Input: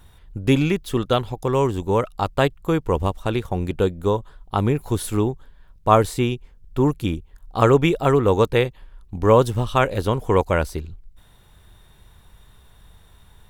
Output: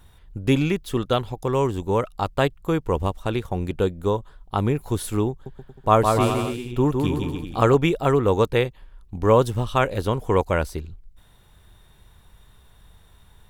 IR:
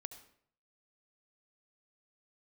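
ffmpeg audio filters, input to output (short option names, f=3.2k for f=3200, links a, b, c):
-filter_complex "[0:a]asettb=1/sr,asplit=3[a][b][c];[a]atrim=end=5.304[d];[b]atrim=start=5.3:end=7.75,asetpts=PTS-STARTPTS,afade=t=in:d=0.004:c=qsin,afade=t=out:st=2.446:d=0.004:c=qsin,aecho=1:1:160|288|390.4|472.3|537.9:0.631|0.398|0.251|0.158|0.1,atrim=end_sample=108045[e];[c]atrim=start=7.746[f];[d][e]acrossfade=d=0.004:c1=hsin:c2=qsin[g];[g][f]acrossfade=d=0.004:c1=qsin:c2=hsin,volume=-2dB"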